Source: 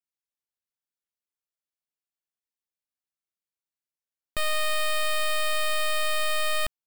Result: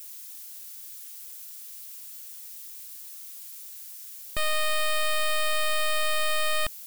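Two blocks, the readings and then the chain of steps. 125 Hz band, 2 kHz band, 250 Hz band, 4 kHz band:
0.0 dB, 0.0 dB, 0.0 dB, 0.0 dB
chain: spike at every zero crossing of −35.5 dBFS

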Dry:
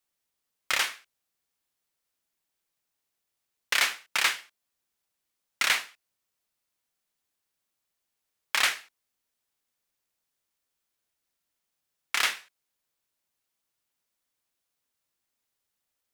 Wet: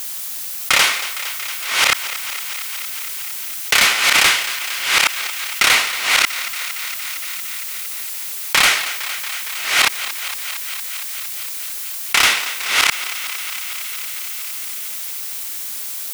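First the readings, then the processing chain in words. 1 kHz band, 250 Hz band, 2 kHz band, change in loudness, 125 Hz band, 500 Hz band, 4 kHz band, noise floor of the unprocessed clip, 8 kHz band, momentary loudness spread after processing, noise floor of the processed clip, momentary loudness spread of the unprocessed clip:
+15.0 dB, +18.5 dB, +14.5 dB, +8.5 dB, can't be measured, +16.0 dB, +15.5 dB, −83 dBFS, +17.0 dB, 11 LU, −28 dBFS, 12 LU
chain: delay that plays each chunk backwards 659 ms, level −6 dB
notch filter 1,700 Hz, Q 9.9
automatic gain control gain up to 9 dB
in parallel at −11 dB: sine wavefolder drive 12 dB, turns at −3 dBFS
on the sum: background noise blue −43 dBFS
on a send: feedback echo with a high-pass in the loop 230 ms, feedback 79%, high-pass 470 Hz, level −23 dB
on the sum: envelope flattener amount 50%
level −1 dB

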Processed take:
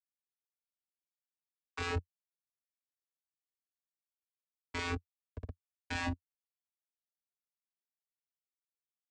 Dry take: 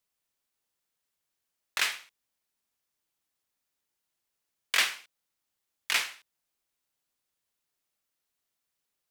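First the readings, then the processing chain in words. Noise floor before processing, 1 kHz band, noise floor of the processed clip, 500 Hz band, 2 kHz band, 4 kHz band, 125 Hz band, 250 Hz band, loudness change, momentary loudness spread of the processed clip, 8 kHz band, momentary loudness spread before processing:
−84 dBFS, −2.5 dB, below −85 dBFS, +6.0 dB, −10.5 dB, −15.0 dB, can't be measured, +17.0 dB, −11.0 dB, 14 LU, −17.5 dB, 17 LU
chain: low-pass that shuts in the quiet parts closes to 460 Hz, open at −29.5 dBFS
in parallel at +2 dB: brickwall limiter −19.5 dBFS, peak gain reduction 10 dB
on the sum: leveller curve on the samples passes 2
on a send: feedback delay with all-pass diffusion 643 ms, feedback 45%, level −14.5 dB
on the sum: comparator with hysteresis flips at −21.5 dBFS
channel vocoder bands 8, square 86.8 Hz
flanger whose copies keep moving one way rising 0.64 Hz

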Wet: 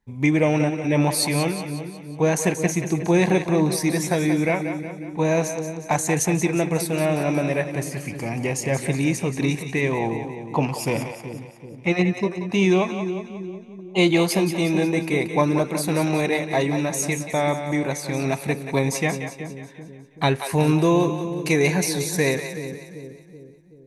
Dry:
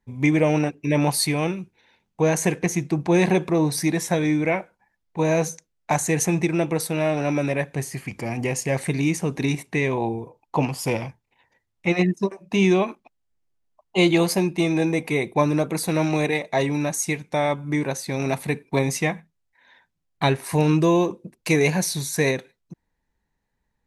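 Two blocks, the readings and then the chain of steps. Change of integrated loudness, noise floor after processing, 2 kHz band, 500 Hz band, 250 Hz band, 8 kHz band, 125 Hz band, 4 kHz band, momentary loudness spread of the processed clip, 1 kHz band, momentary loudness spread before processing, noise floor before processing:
+0.5 dB, −43 dBFS, +0.5 dB, +0.5 dB, +0.5 dB, +0.5 dB, +0.5 dB, +0.5 dB, 13 LU, +0.5 dB, 9 LU, −76 dBFS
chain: echo with a time of its own for lows and highs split 450 Hz, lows 381 ms, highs 181 ms, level −9 dB

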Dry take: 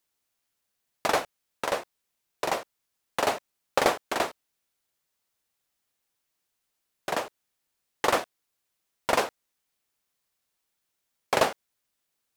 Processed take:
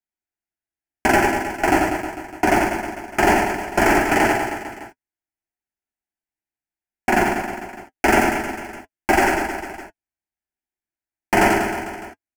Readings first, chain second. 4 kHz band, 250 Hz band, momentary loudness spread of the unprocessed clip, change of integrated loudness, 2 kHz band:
+3.0 dB, +18.5 dB, 11 LU, +9.5 dB, +13.5 dB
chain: sub-harmonics by changed cycles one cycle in 3, inverted
low-pass filter 3,500 Hz 6 dB per octave
parametric band 100 Hz +11 dB 2 octaves
leveller curve on the samples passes 5
flanger 0.86 Hz, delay 5.1 ms, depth 1.2 ms, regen −48%
phaser with its sweep stopped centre 760 Hz, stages 8
reverse bouncing-ball delay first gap 90 ms, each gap 1.15×, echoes 5
boost into a limiter +7.5 dB
level −4 dB

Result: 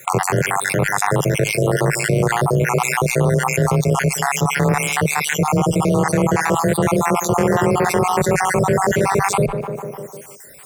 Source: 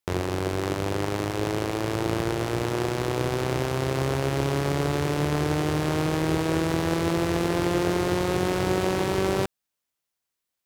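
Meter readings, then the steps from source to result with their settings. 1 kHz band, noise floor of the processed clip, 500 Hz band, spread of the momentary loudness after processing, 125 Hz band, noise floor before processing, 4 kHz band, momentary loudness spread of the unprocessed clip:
+11.5 dB, −38 dBFS, +7.5 dB, 2 LU, +8.5 dB, −84 dBFS, +4.5 dB, 3 LU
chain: time-frequency cells dropped at random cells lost 58%
octave-band graphic EQ 125/250/500/1,000/2,000/4,000/8,000 Hz +10/−4/+6/+3/+6/−12/+9 dB
frequency shifter +24 Hz
tape delay 151 ms, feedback 42%, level −22 dB, low-pass 2,000 Hz
envelope flattener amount 70%
level +3 dB

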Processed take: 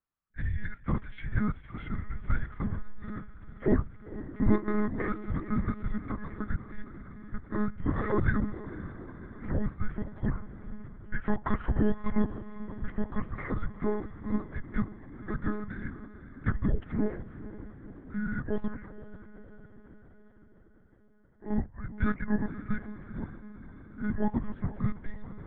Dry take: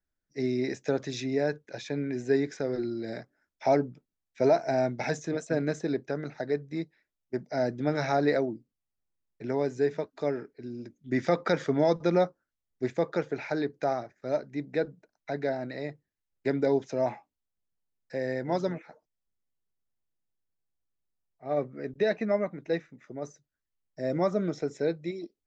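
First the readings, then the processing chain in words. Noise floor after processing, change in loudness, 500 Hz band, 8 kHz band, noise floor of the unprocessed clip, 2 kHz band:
−56 dBFS, −3.5 dB, −11.0 dB, can't be measured, below −85 dBFS, −2.0 dB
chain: single-sideband voice off tune −350 Hz 230–2,900 Hz
feedback delay with all-pass diffusion 488 ms, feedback 62%, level −14 dB
one-pitch LPC vocoder at 8 kHz 210 Hz

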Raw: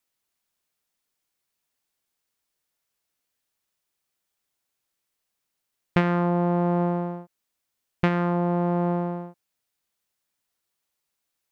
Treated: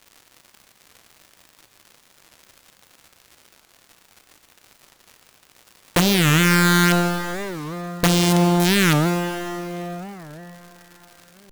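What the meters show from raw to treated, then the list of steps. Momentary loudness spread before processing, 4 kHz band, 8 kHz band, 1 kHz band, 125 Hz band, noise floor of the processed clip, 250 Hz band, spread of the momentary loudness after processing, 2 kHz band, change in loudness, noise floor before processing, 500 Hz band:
11 LU, +24.0 dB, can't be measured, +5.0 dB, +6.5 dB, −58 dBFS, +6.0 dB, 16 LU, +14.5 dB, +6.0 dB, −81 dBFS, +3.5 dB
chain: automatic gain control gain up to 6.5 dB
surface crackle 200 per second −34 dBFS
wrap-around overflow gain 10.5 dB
dense smooth reverb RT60 4.8 s, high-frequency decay 0.6×, DRR 4 dB
wow of a warped record 45 rpm, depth 250 cents

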